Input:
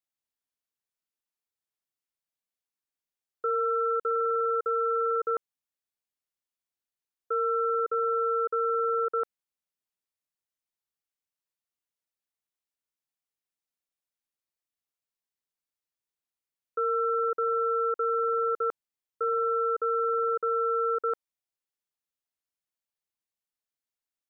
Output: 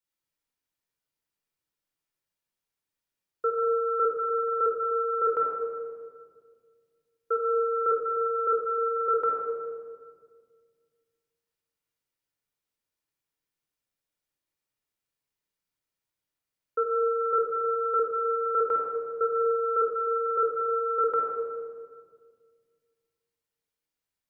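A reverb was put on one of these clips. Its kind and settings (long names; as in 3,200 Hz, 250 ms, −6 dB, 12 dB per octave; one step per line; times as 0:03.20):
rectangular room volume 2,900 cubic metres, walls mixed, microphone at 4.6 metres
level −2 dB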